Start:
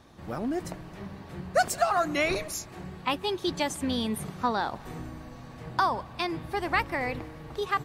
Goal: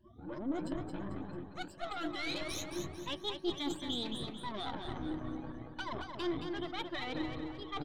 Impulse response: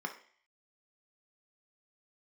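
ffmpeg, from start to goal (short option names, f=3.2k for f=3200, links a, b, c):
-filter_complex "[0:a]afftfilt=real='re*pow(10,22/40*sin(2*PI*(1.3*log(max(b,1)*sr/1024/100)/log(2)-(2.9)*(pts-256)/sr)))':imag='im*pow(10,22/40*sin(2*PI*(1.3*log(max(b,1)*sr/1024/100)/log(2)-(2.9)*(pts-256)/sr)))':win_size=1024:overlap=0.75,afftdn=nr=26:nf=-41,acrossover=split=5500[a][b];[b]acompressor=threshold=-38dB:ratio=4:attack=1:release=60[c];[a][c]amix=inputs=2:normalize=0,highshelf=f=7.5k:g=-8.5,areverse,acompressor=threshold=-34dB:ratio=16,areverse,aeval=exprs='(tanh(56.2*val(0)+0.8)-tanh(0.8))/56.2':c=same,superequalizer=6b=2.51:13b=3.55,aecho=1:1:222|444|666|888|1110:0.501|0.195|0.0762|0.0297|0.0116"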